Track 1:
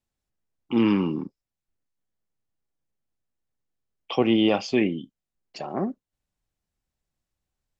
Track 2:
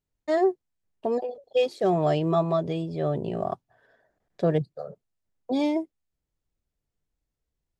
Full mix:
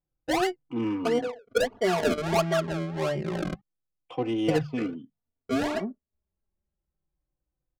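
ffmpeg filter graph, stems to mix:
ffmpeg -i stem1.wav -i stem2.wav -filter_complex "[0:a]volume=-4dB[link_01];[1:a]lowpass=frequency=4200:width=0.5412,lowpass=frequency=4200:width=1.3066,bandreject=frequency=50:width_type=h:width=6,bandreject=frequency=100:width_type=h:width=6,bandreject=frequency=150:width_type=h:width=6,bandreject=frequency=200:width_type=h:width=6,acrusher=samples=33:mix=1:aa=0.000001:lfo=1:lforange=33:lforate=1.5,volume=2dB,asplit=3[link_02][link_03][link_04];[link_02]atrim=end=3.61,asetpts=PTS-STARTPTS,afade=type=out:start_time=3.606:duration=0.004:curve=hsin[link_05];[link_03]atrim=start=3.61:end=4.48,asetpts=PTS-STARTPTS,volume=0[link_06];[link_04]atrim=start=4.48,asetpts=PTS-STARTPTS,afade=type=in:duration=0.004:curve=hsin[link_07];[link_05][link_06][link_07]concat=n=3:v=0:a=1[link_08];[link_01][link_08]amix=inputs=2:normalize=0,adynamicsmooth=sensitivity=1.5:basefreq=1600,asplit=2[link_09][link_10];[link_10]adelay=3.4,afreqshift=-0.27[link_11];[link_09][link_11]amix=inputs=2:normalize=1" out.wav

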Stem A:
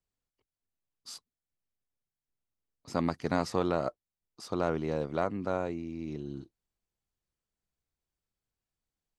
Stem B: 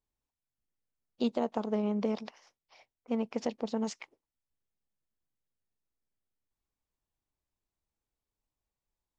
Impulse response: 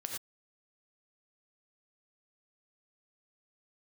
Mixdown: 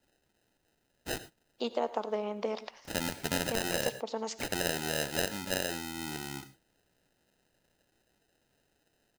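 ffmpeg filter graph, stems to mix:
-filter_complex "[0:a]aexciter=amount=6.4:drive=8.9:freq=7600,acrusher=samples=39:mix=1:aa=0.000001,tiltshelf=frequency=1400:gain=-5.5,volume=0dB,asplit=2[link_01][link_02];[link_02]volume=-8dB[link_03];[1:a]highpass=460,adelay=400,volume=1dB,asplit=2[link_04][link_05];[link_05]volume=-10dB[link_06];[2:a]atrim=start_sample=2205[link_07];[link_03][link_06]amix=inputs=2:normalize=0[link_08];[link_08][link_07]afir=irnorm=-1:irlink=0[link_09];[link_01][link_04][link_09]amix=inputs=3:normalize=0,alimiter=limit=-11dB:level=0:latency=1:release=428"

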